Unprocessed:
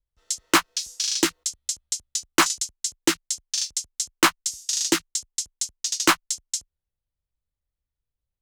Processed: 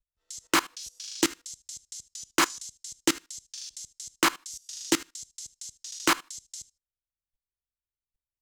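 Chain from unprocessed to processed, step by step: on a send at -9 dB: reverb RT60 0.25 s, pre-delay 21 ms; on the sum: level quantiser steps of 20 dB

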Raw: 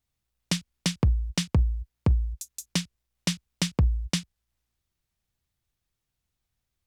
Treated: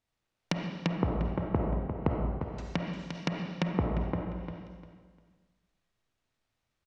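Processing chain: block floating point 3-bit; notches 60/120/180 Hz; compressor, threshold -23 dBFS, peak gain reduction 6 dB; high shelf 3400 Hz -10 dB; treble ducked by the level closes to 760 Hz, closed at -27.5 dBFS; feedback echo 0.35 s, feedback 25%, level -9 dB; reverb RT60 1.3 s, pre-delay 10 ms, DRR 0.5 dB; treble ducked by the level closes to 1900 Hz, closed at -28.5 dBFS; LPF 8100 Hz; low shelf 140 Hz -11 dB; gain +3.5 dB

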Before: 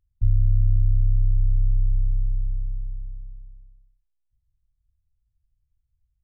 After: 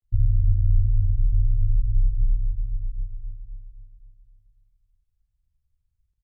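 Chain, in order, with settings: grains 0.1 s; on a send: feedback echo 0.266 s, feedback 59%, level -10.5 dB

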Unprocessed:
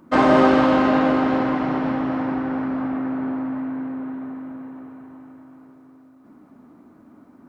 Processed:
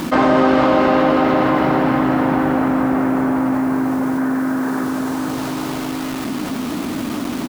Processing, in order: 4.18–4.84 fifteen-band EQ 100 Hz -12 dB, 250 Hz +4 dB, 1600 Hz +9 dB; feedback echo 0.449 s, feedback 17%, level -8 dB; bit-crush 9-bit; fast leveller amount 70%

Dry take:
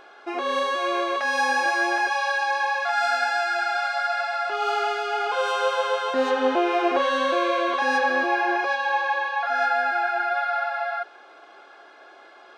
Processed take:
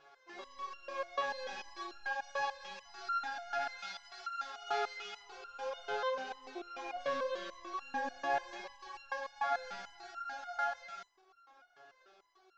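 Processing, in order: CVSD 32 kbps; 3.78–5.23 tilt shelf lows -4 dB; stepped resonator 6.8 Hz 140–1400 Hz; gain -2 dB

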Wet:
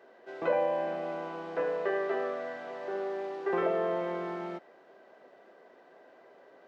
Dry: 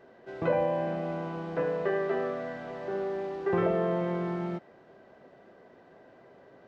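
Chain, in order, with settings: HPF 370 Hz 12 dB/oct

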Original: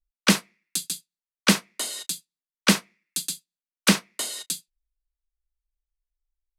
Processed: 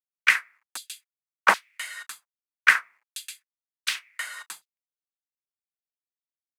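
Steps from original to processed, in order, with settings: companded quantiser 6-bit; LFO high-pass saw down 1.3 Hz 780–4000 Hz; resonant high shelf 2600 Hz -13 dB, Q 1.5; gain +2.5 dB

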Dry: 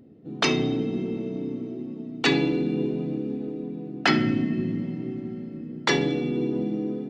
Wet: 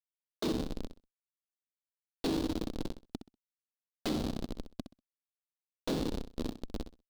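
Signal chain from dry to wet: notches 50/100/150/200/250/300/350/400/450 Hz; resonator 160 Hz, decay 0.2 s, harmonics all, mix 70%; whine 610 Hz -59 dBFS; Schmitt trigger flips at -25.5 dBFS; graphic EQ 125/250/500/2000/4000 Hz -4/+11/+7/-6/+12 dB; feedback echo 64 ms, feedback 23%, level -11.5 dB; limiter -22 dBFS, peak gain reduction 3.5 dB; gain -2.5 dB

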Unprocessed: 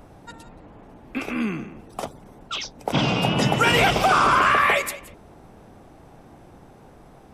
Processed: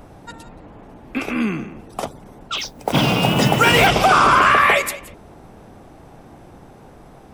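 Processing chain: 2.57–3.87 modulation noise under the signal 21 dB; gain +4.5 dB

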